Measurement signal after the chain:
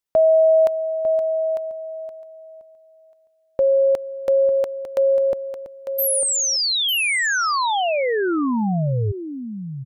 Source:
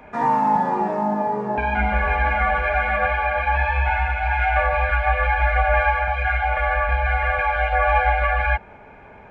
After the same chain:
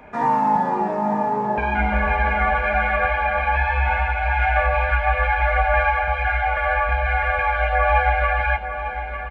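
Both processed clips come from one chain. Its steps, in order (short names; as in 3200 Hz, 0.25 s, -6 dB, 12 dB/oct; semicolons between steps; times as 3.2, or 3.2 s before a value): echo 0.9 s -9.5 dB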